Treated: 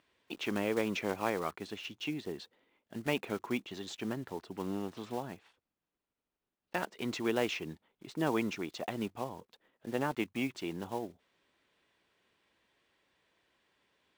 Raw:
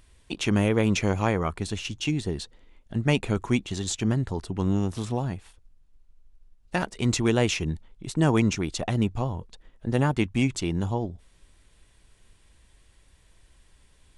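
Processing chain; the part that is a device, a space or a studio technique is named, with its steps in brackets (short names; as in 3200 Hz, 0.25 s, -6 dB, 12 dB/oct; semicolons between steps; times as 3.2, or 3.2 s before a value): early digital voice recorder (BPF 280–3600 Hz; block floating point 5-bit); gain -6.5 dB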